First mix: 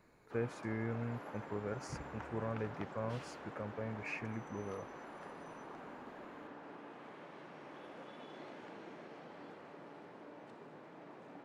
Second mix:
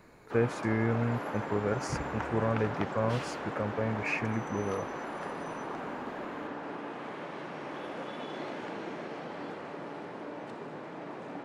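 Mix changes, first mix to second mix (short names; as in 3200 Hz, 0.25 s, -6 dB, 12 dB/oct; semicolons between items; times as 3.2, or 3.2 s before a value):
speech +10.0 dB; background +12.0 dB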